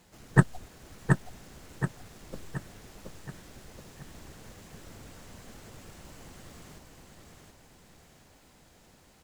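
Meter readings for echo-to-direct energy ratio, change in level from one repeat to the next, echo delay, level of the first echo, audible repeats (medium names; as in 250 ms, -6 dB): -3.0 dB, -6.5 dB, 725 ms, -4.0 dB, 5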